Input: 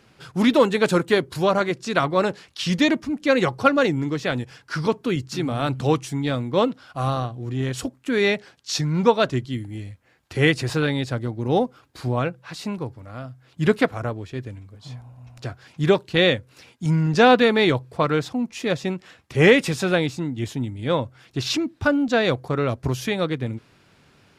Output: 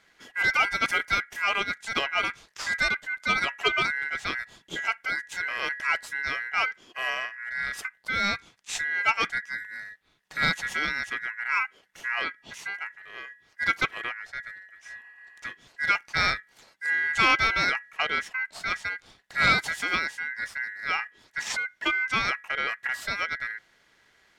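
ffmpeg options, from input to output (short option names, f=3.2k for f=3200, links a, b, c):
-af "aeval=exprs='val(0)*sin(2*PI*1800*n/s)':c=same,asoftclip=type=tanh:threshold=-6dB,volume=-3.5dB"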